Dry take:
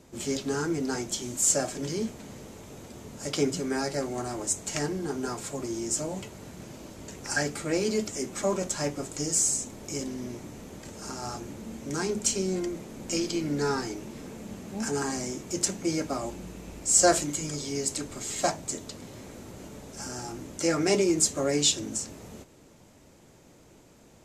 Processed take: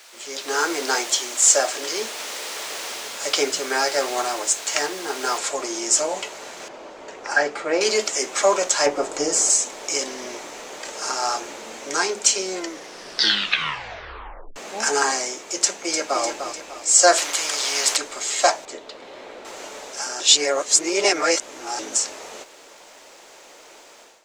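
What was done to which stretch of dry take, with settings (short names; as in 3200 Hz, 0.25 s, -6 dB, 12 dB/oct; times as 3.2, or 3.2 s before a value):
0.46–2.57 HPF 220 Hz
5.38 noise floor step -43 dB -65 dB
6.68–7.81 LPF 1100 Hz 6 dB/oct
8.86–9.5 tilt shelf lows +7 dB, about 1400 Hz
12.58 tape stop 1.98 s
15.62–16.22 echo throw 0.3 s, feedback 50%, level -8.5 dB
17.18–17.97 spectral compressor 2:1
18.65–19.45 EQ curve 490 Hz 0 dB, 1100 Hz -4 dB, 3800 Hz -6 dB, 6400 Hz -17 dB
20.2–21.79 reverse
whole clip: three-band isolator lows -21 dB, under 410 Hz, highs -16 dB, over 7900 Hz; AGC gain up to 15.5 dB; bell 100 Hz -14 dB 2.7 oct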